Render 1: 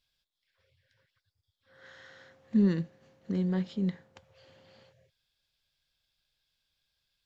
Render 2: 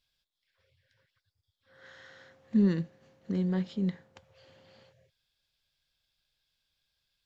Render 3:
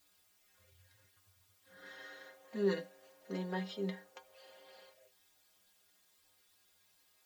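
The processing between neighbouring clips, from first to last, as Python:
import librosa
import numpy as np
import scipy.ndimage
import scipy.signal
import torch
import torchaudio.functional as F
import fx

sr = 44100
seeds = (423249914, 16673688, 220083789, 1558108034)

y1 = x
y2 = fx.filter_sweep_highpass(y1, sr, from_hz=64.0, to_hz=530.0, start_s=1.17, end_s=2.4, q=1.3)
y2 = fx.dmg_noise_colour(y2, sr, seeds[0], colour='white', level_db=-73.0)
y2 = fx.stiff_resonator(y2, sr, f0_hz=93.0, decay_s=0.25, stiffness=0.008)
y2 = y2 * 10.0 ** (9.5 / 20.0)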